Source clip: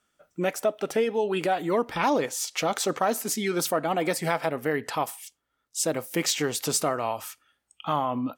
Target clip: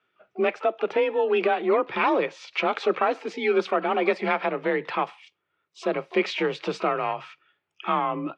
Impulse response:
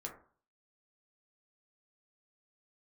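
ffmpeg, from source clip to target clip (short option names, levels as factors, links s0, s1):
-filter_complex "[0:a]asplit=2[s0][s1];[s1]asetrate=88200,aresample=44100,atempo=0.5,volume=0.141[s2];[s0][s2]amix=inputs=2:normalize=0,afreqshift=34,highpass=120,equalizer=f=140:t=q:w=4:g=3,equalizer=f=260:t=q:w=4:g=-6,equalizer=f=390:t=q:w=4:g=8,equalizer=f=1200:t=q:w=4:g=4,equalizer=f=2400:t=q:w=4:g=7,lowpass=f=3600:w=0.5412,lowpass=f=3600:w=1.3066"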